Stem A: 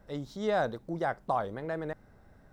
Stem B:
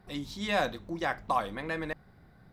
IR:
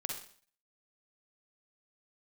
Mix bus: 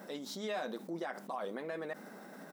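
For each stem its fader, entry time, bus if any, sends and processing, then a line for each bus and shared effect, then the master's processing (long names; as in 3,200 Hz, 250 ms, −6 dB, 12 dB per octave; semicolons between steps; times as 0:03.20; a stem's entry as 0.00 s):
−10.5 dB, 0.00 s, no send, high-shelf EQ 5,900 Hz +8.5 dB; envelope flattener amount 70%
−4.5 dB, 4.9 ms, no send, automatic ducking −7 dB, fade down 0.20 s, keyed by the first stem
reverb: not used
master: linear-phase brick-wall high-pass 170 Hz; brickwall limiter −29.5 dBFS, peak gain reduction 8 dB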